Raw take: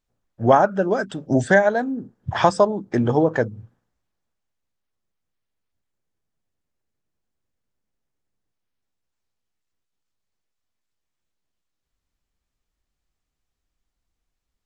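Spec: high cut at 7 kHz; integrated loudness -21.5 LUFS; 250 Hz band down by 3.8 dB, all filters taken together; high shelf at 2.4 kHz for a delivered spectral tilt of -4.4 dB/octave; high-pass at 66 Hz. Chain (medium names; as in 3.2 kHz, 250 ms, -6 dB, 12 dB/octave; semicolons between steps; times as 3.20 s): high-pass 66 Hz; low-pass 7 kHz; peaking EQ 250 Hz -5 dB; treble shelf 2.4 kHz +5 dB; trim -1 dB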